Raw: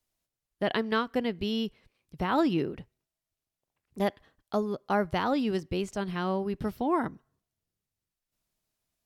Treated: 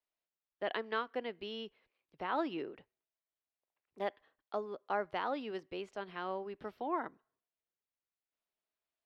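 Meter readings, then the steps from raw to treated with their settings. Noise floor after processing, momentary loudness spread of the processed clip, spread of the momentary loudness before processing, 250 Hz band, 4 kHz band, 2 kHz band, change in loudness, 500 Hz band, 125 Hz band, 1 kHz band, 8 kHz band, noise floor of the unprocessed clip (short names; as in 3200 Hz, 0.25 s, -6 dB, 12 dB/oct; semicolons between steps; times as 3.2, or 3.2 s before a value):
under -85 dBFS, 9 LU, 6 LU, -15.0 dB, -9.0 dB, -7.0 dB, -9.5 dB, -8.5 dB, -21.0 dB, -6.5 dB, under -20 dB, under -85 dBFS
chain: three-band isolator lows -19 dB, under 330 Hz, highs -19 dB, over 4000 Hz; gain -6.5 dB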